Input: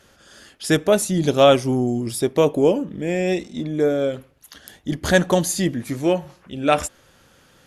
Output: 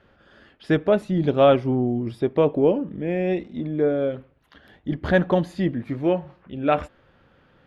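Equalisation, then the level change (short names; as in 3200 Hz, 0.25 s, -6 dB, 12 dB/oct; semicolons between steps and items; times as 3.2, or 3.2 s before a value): air absorption 410 m; -1.0 dB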